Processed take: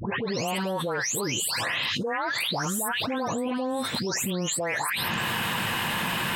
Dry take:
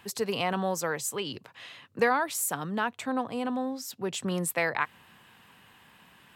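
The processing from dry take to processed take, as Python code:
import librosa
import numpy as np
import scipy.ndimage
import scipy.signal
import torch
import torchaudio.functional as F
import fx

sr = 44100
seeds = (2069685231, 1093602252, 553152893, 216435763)

y = fx.spec_delay(x, sr, highs='late', ms=390)
y = fx.env_flatten(y, sr, amount_pct=100)
y = y * librosa.db_to_amplitude(-7.5)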